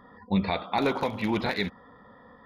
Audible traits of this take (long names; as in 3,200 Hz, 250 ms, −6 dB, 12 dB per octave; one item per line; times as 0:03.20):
background noise floor −54 dBFS
spectral slope −4.5 dB per octave